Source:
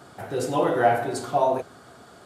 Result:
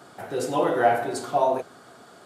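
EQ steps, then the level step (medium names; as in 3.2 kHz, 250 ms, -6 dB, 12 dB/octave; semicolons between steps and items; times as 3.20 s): Bessel high-pass 170 Hz, order 2; 0.0 dB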